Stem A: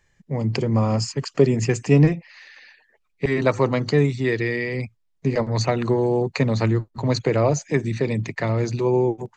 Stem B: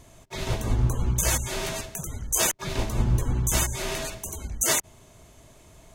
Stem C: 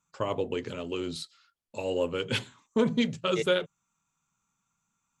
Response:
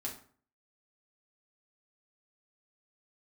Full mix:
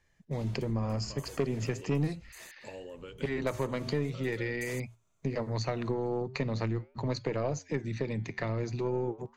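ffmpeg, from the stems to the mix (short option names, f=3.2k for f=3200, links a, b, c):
-filter_complex "[0:a]aeval=exprs='0.708*(cos(1*acos(clip(val(0)/0.708,-1,1)))-cos(1*PI/2))+0.1*(cos(4*acos(clip(val(0)/0.708,-1,1)))-cos(4*PI/2))+0.141*(cos(6*acos(clip(val(0)/0.708,-1,1)))-cos(6*PI/2))+0.0355*(cos(8*acos(clip(val(0)/0.708,-1,1)))-cos(8*PI/2))':c=same,flanger=delay=4.2:depth=8:regen=-89:speed=0.41:shape=sinusoidal,lowpass=f=6.8k:w=0.5412,lowpass=f=6.8k:w=1.3066,volume=-2dB,asplit=2[a][b];[1:a]volume=-16.5dB[c];[2:a]alimiter=level_in=1.5dB:limit=-24dB:level=0:latency=1:release=170,volume=-1.5dB,adelay=900,volume=-4dB[d];[b]apad=whole_len=261961[e];[c][e]sidechaingate=range=-13dB:threshold=-45dB:ratio=16:detection=peak[f];[f][d]amix=inputs=2:normalize=0,acompressor=threshold=-42dB:ratio=4,volume=0dB[g];[a][g]amix=inputs=2:normalize=0,acompressor=threshold=-32dB:ratio=2"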